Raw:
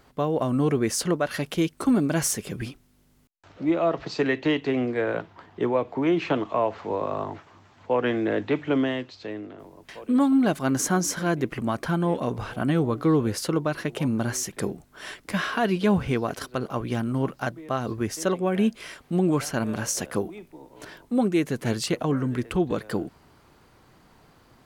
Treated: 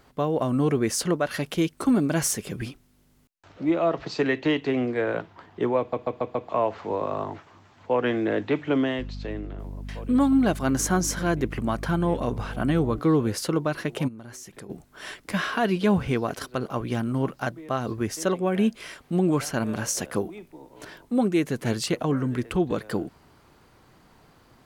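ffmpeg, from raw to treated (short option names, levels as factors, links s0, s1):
-filter_complex "[0:a]asettb=1/sr,asplit=3[s0][s1][s2];[s0]atrim=end=8.994[s3];[s1]atrim=start=8.99:end=12.99,asetpts=PTS-STARTPTS,afade=t=in:d=0.004:c=qsin,afade=t=out:st=3.996:d=0.004:c=qsin,aeval=exprs='val(0)+0.02*(sin(2*PI*50*n/s)+sin(2*PI*2*50*n/s)/2+sin(2*PI*3*50*n/s)/3+sin(2*PI*4*50*n/s)/4+sin(2*PI*5*50*n/s)/5)':c=same[s4];[s2]atrim=start=12.986[s5];[s3][s4]acrossfade=d=0.004:c1=hsin:c2=qsin[s6];[s6][s5]acrossfade=d=0.004:c1=qsin:c2=hsin,asplit=3[s7][s8][s9];[s7]afade=t=out:st=14.07:d=0.02[s10];[s8]acompressor=threshold=0.01:ratio=5:attack=3.2:release=140:knee=1:detection=peak,afade=t=in:st=14.07:d=0.02,afade=t=out:st=14.69:d=0.02[s11];[s9]afade=t=in:st=14.69:d=0.02[s12];[s10][s11][s12]amix=inputs=3:normalize=0,asplit=6[s13][s14][s15][s16][s17][s18];[s13]atrim=end=5.932[s19];[s14]atrim=start=5.788:end=5.932[s20];[s15]atrim=start=5.788:end=5.932[s21];[s16]atrim=start=5.788:end=5.932[s22];[s17]atrim=start=5.788:end=5.932[s23];[s18]atrim=start=6.488[s24];[s19][s20]acrossfade=d=0.004:c1=hsin:c2=hsin[s25];[s25][s21]acrossfade=d=0.004:c1=hsin:c2=hsin[s26];[s26][s22]acrossfade=d=0.004:c1=hsin:c2=hsin[s27];[s27][s23]acrossfade=d=0.004:c1=hsin:c2=hsin[s28];[s28][s24]acrossfade=d=0.004:c1=hsin:c2=hsin"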